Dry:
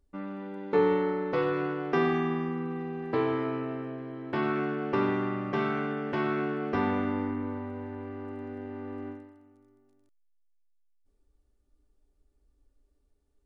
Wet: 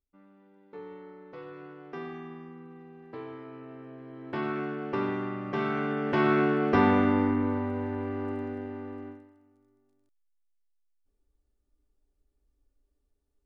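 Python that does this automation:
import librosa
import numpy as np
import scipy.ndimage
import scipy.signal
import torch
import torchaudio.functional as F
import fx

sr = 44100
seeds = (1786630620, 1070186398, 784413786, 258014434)

y = fx.gain(x, sr, db=fx.line((0.84, -20.0), (1.87, -13.5), (3.47, -13.5), (4.29, -3.0), (5.4, -3.0), (6.32, 6.0), (8.31, 6.0), (9.22, -5.0)))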